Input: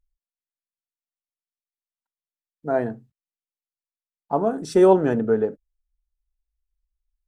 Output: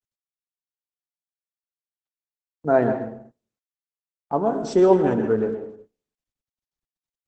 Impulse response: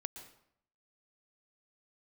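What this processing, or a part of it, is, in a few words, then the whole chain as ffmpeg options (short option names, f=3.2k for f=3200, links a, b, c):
speakerphone in a meeting room: -filter_complex "[1:a]atrim=start_sample=2205[a];[0:a][a]afir=irnorm=-1:irlink=0,dynaudnorm=f=300:g=11:m=16dB,agate=range=-21dB:threshold=-43dB:ratio=16:detection=peak,volume=-3dB" -ar 48000 -c:a libopus -b:a 12k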